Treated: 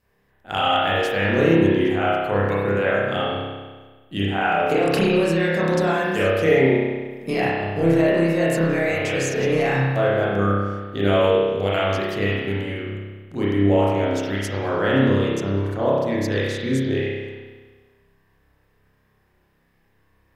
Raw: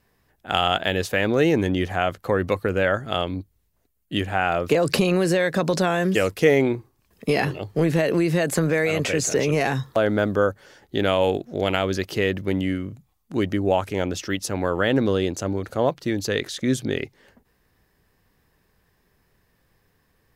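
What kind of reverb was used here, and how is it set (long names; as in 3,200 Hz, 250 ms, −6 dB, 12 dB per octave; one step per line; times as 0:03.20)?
spring reverb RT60 1.4 s, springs 30 ms, chirp 75 ms, DRR −7.5 dB
level −6 dB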